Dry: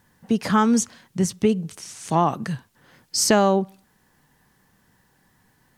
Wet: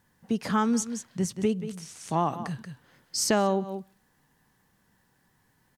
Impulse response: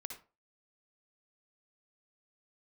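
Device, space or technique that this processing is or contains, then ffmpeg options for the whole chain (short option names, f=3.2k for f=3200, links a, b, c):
ducked delay: -filter_complex "[0:a]asplit=3[a][b][c];[b]adelay=182,volume=-7.5dB[d];[c]apad=whole_len=262518[e];[d][e]sidechaincompress=threshold=-32dB:ratio=8:attack=16:release=121[f];[a][f]amix=inputs=2:normalize=0,volume=-6.5dB"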